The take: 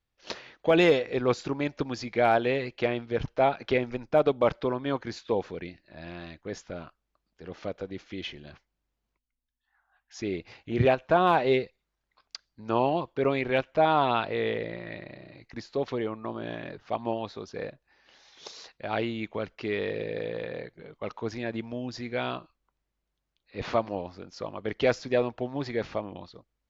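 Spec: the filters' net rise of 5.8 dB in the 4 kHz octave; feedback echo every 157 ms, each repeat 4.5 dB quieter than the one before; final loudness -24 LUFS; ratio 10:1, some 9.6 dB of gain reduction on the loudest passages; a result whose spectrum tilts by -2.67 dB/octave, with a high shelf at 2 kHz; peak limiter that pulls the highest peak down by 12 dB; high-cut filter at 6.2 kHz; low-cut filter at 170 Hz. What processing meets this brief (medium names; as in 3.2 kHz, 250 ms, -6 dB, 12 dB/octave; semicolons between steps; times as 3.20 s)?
high-pass 170 Hz; low-pass 6.2 kHz; treble shelf 2 kHz +4 dB; peaking EQ 4 kHz +4 dB; compression 10:1, threshold -26 dBFS; peak limiter -25.5 dBFS; feedback delay 157 ms, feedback 60%, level -4.5 dB; trim +12.5 dB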